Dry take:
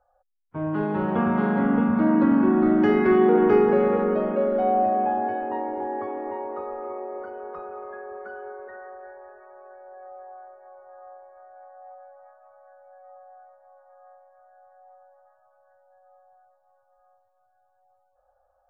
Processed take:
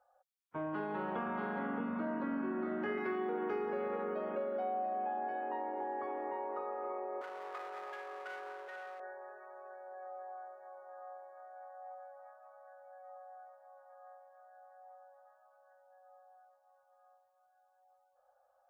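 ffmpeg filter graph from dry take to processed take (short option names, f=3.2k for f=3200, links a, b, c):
-filter_complex "[0:a]asettb=1/sr,asplit=3[a][b][c];[a]atrim=end=1.784[d];[b]atrim=start=1.78:end=2.98,asetpts=PTS-STARTPTS,afade=t=in:d=0.004:c=qsin,afade=t=out:st=1.196:d=0.004:c=qsin,acrossover=split=2600[e][f];[f]acompressor=threshold=-56dB:ratio=4:attack=1:release=60[g];[e][g]amix=inputs=2:normalize=0,asplit=2[h][i];[i]adelay=21,volume=-5dB[j];[h][j]amix=inputs=2:normalize=0,atrim=end_sample=52920[k];[c]atrim=start=2.976[l];[d][k]acrossfade=d=0.004:c1=hsin:c2=qsin[m];[m][l]acrossfade=d=0.004:c1=qsin:c2=hsin,asettb=1/sr,asplit=3[n][o][p];[n]atrim=end=7.214[q];[o]atrim=start=7.21:end=9,asetpts=PTS-STARTPTS,afade=t=in:d=0.004:c=qsin,afade=t=out:st=1.786:d=0.004:c=qsin,aeval=exprs='clip(val(0),-1,0.00841)':c=same,highpass=430[r];[p]atrim=start=8.996[s];[q][r]acrossfade=d=0.004:c1=hsin:c2=qsin[t];[t][s]acrossfade=d=0.004:c1=qsin:c2=hsin,highpass=f=660:p=1,acompressor=threshold=-35dB:ratio=4,volume=-1dB"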